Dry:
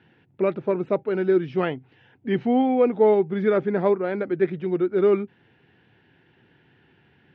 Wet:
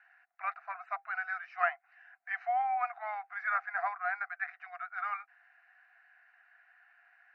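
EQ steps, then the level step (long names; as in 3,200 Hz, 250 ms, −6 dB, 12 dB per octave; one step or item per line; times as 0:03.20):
Chebyshev high-pass filter 690 Hz, order 10
low-pass filter 1,700 Hz 6 dB per octave
phaser with its sweep stopped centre 900 Hz, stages 6
+6.0 dB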